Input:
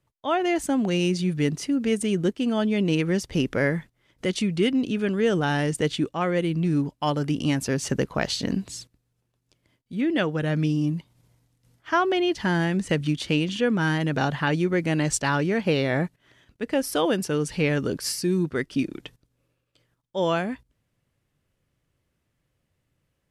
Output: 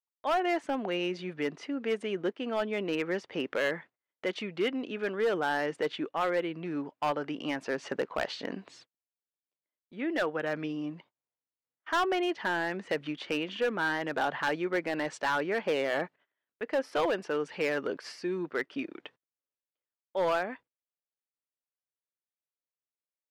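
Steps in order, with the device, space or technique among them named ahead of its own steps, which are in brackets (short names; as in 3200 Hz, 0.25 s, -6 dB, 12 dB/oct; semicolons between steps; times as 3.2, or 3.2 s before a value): walkie-talkie (BPF 500–2200 Hz; hard clip -22.5 dBFS, distortion -12 dB; gate -55 dBFS, range -26 dB)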